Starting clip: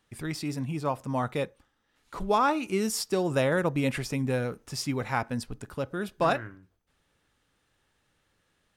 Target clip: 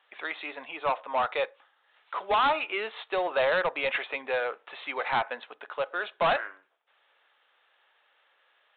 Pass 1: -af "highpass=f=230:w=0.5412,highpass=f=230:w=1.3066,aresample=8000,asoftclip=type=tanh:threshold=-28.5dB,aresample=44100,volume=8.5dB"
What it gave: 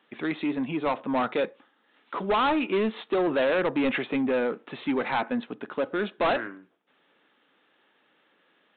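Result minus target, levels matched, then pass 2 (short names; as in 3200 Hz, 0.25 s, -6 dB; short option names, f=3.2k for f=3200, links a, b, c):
250 Hz band +16.0 dB
-af "highpass=f=580:w=0.5412,highpass=f=580:w=1.3066,aresample=8000,asoftclip=type=tanh:threshold=-28.5dB,aresample=44100,volume=8.5dB"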